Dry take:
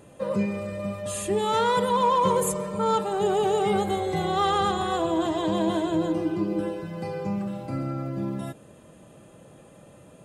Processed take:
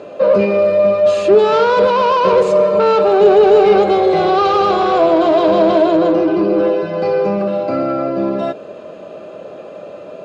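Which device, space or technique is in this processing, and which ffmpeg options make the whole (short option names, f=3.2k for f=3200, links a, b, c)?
overdrive pedal into a guitar cabinet: -filter_complex "[0:a]asplit=2[a][b];[b]highpass=f=720:p=1,volume=21dB,asoftclip=type=tanh:threshold=-11dB[c];[a][c]amix=inputs=2:normalize=0,lowpass=f=6.4k:p=1,volume=-6dB,highpass=80,equalizer=f=130:t=q:w=4:g=-8,equalizer=f=410:t=q:w=4:g=7,equalizer=f=620:t=q:w=4:g=9,equalizer=f=880:t=q:w=4:g=-6,equalizer=f=1.9k:t=q:w=4:g=-10,equalizer=f=3.3k:t=q:w=4:g=-8,lowpass=f=4.5k:w=0.5412,lowpass=f=4.5k:w=1.3066,volume=4.5dB"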